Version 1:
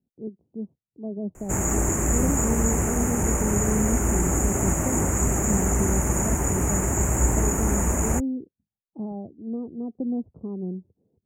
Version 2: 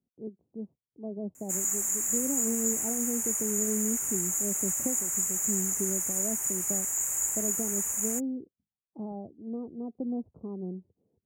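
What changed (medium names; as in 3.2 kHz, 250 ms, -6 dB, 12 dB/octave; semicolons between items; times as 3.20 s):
background: add pre-emphasis filter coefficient 0.97; master: add bass shelf 460 Hz -7 dB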